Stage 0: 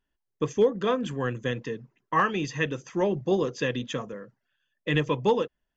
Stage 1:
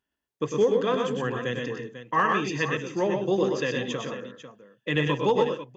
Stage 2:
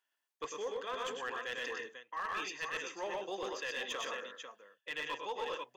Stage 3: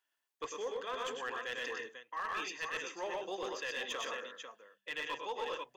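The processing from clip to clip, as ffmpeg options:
ffmpeg -i in.wav -af "highpass=53,lowshelf=frequency=130:gain=-7.5,aecho=1:1:100|121|178|495:0.447|0.596|0.158|0.237" out.wav
ffmpeg -i in.wav -af "highpass=780,areverse,acompressor=threshold=-36dB:ratio=12,areverse,aeval=exprs='clip(val(0),-1,0.0188)':channel_layout=same,volume=1dB" out.wav
ffmpeg -i in.wav -af "bandreject=frequency=50:width_type=h:width=6,bandreject=frequency=100:width_type=h:width=6,bandreject=frequency=150:width_type=h:width=6,bandreject=frequency=200:width_type=h:width=6" out.wav

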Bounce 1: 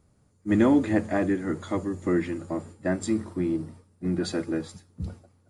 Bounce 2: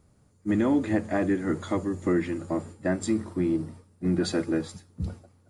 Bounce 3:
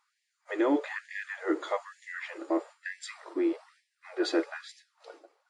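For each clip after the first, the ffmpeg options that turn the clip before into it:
ffmpeg -i in.wav -af "alimiter=limit=-17.5dB:level=0:latency=1:release=384,volume=2dB" out.wav
ffmpeg -i in.wav -af "highpass=130,lowpass=4700,afftfilt=real='re*gte(b*sr/1024,260*pow(1700/260,0.5+0.5*sin(2*PI*1.1*pts/sr)))':imag='im*gte(b*sr/1024,260*pow(1700/260,0.5+0.5*sin(2*PI*1.1*pts/sr)))':win_size=1024:overlap=0.75,volume=1.5dB" out.wav

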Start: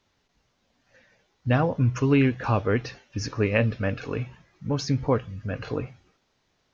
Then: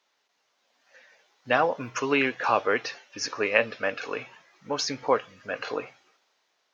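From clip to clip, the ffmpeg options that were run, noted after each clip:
ffmpeg -i in.wav -af "highpass=580,dynaudnorm=framelen=140:gausssize=11:maxgain=5.5dB" out.wav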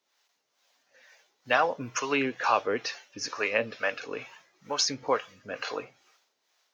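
ffmpeg -i in.wav -filter_complex "[0:a]highshelf=frequency=6200:gain=11,acrossover=split=510[link_01][link_02];[link_01]aeval=exprs='val(0)*(1-0.7/2+0.7/2*cos(2*PI*2.2*n/s))':channel_layout=same[link_03];[link_02]aeval=exprs='val(0)*(1-0.7/2-0.7/2*cos(2*PI*2.2*n/s))':channel_layout=same[link_04];[link_03][link_04]amix=inputs=2:normalize=0" out.wav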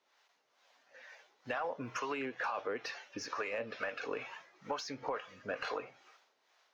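ffmpeg -i in.wav -filter_complex "[0:a]alimiter=limit=-20dB:level=0:latency=1:release=11,acompressor=threshold=-36dB:ratio=12,asplit=2[link_01][link_02];[link_02]highpass=frequency=720:poles=1,volume=9dB,asoftclip=type=tanh:threshold=-25.5dB[link_03];[link_01][link_03]amix=inputs=2:normalize=0,lowpass=frequency=1400:poles=1,volume=-6dB,volume=2.5dB" out.wav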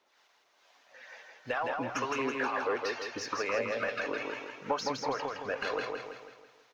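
ffmpeg -i in.wav -af "aphaser=in_gain=1:out_gain=1:delay=3.3:decay=0.31:speed=0.85:type=sinusoidal,aecho=1:1:164|328|492|656|820|984:0.668|0.314|0.148|0.0694|0.0326|0.0153,volume=3.5dB" out.wav

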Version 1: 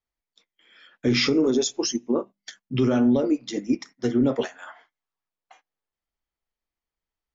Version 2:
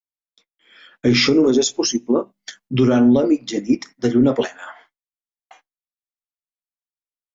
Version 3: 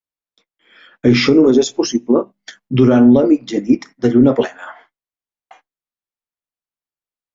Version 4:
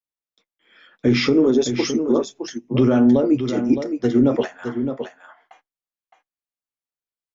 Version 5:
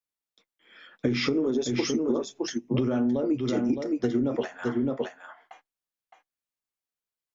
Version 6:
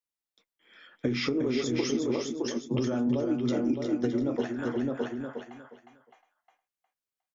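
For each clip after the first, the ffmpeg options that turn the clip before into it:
ffmpeg -i in.wav -af "agate=range=-33dB:threshold=-56dB:ratio=3:detection=peak,volume=6dB" out.wav
ffmpeg -i in.wav -af "highshelf=frequency=3200:gain=-10,volume=4.5dB" out.wav
ffmpeg -i in.wav -af "aecho=1:1:614:0.398,volume=-5.5dB" out.wav
ffmpeg -i in.wav -af "acompressor=threshold=-22dB:ratio=10" out.wav
ffmpeg -i in.wav -af "aecho=1:1:359|718|1077:0.501|0.12|0.0289,volume=-3dB" out.wav

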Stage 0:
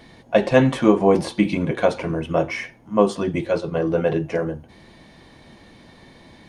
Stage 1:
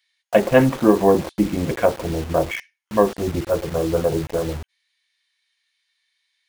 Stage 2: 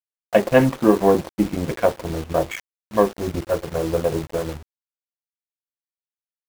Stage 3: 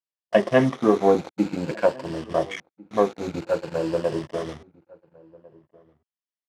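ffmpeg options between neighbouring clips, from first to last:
ffmpeg -i in.wav -filter_complex "[0:a]afwtdn=0.0398,asubboost=boost=10.5:cutoff=61,acrossover=split=1800[link_01][link_02];[link_01]acrusher=bits=5:mix=0:aa=0.000001[link_03];[link_03][link_02]amix=inputs=2:normalize=0,volume=1.5dB" out.wav
ffmpeg -i in.wav -af "aeval=exprs='sgn(val(0))*max(abs(val(0))-0.0237,0)':channel_layout=same" out.wav
ffmpeg -i in.wav -filter_complex "[0:a]afftfilt=real='re*pow(10,7/40*sin(2*PI*(1.3*log(max(b,1)*sr/1024/100)/log(2)-(0.51)*(pts-256)/sr)))':imag='im*pow(10,7/40*sin(2*PI*(1.3*log(max(b,1)*sr/1024/100)/log(2)-(0.51)*(pts-256)/sr)))':win_size=1024:overlap=0.75,highpass=140,lowpass=6000,asplit=2[link_01][link_02];[link_02]adelay=1399,volume=-24dB,highshelf=frequency=4000:gain=-31.5[link_03];[link_01][link_03]amix=inputs=2:normalize=0,volume=-3dB" out.wav

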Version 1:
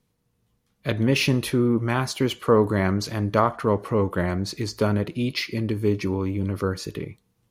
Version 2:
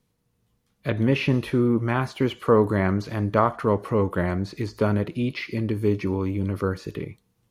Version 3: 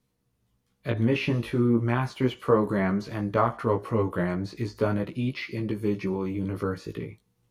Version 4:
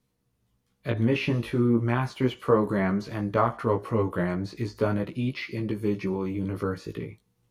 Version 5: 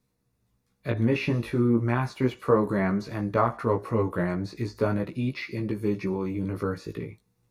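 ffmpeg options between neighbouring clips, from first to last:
ffmpeg -i in.wav -filter_complex "[0:a]acrossover=split=2900[link_01][link_02];[link_02]acompressor=threshold=-47dB:ratio=4:attack=1:release=60[link_03];[link_01][link_03]amix=inputs=2:normalize=0" out.wav
ffmpeg -i in.wav -af "flanger=delay=15:depth=2.5:speed=0.36" out.wav
ffmpeg -i in.wav -af anull out.wav
ffmpeg -i in.wav -af "bandreject=frequency=3100:width=6.1" out.wav

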